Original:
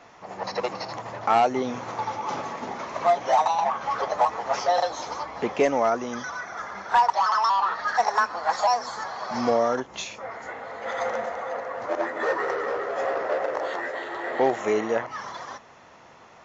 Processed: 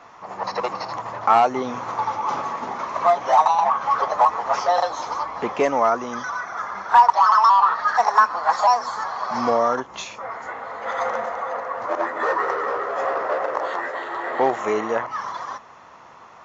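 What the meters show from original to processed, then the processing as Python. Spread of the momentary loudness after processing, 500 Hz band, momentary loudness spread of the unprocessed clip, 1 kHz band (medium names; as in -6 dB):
14 LU, +1.5 dB, 13 LU, +6.0 dB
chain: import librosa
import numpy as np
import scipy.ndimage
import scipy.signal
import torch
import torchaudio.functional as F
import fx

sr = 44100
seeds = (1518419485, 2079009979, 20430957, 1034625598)

y = fx.peak_eq(x, sr, hz=1100.0, db=9.0, octaves=0.8)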